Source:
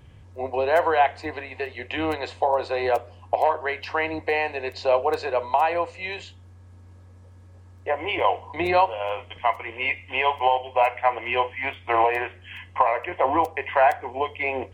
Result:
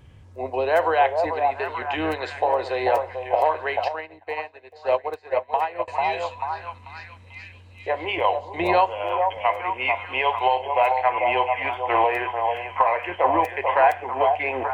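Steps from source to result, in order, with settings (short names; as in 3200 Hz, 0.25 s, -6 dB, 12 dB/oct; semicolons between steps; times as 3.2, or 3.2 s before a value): delay with a stepping band-pass 0.441 s, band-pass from 700 Hz, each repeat 0.7 oct, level -2.5 dB; 3.88–5.88 upward expander 2.5:1, over -34 dBFS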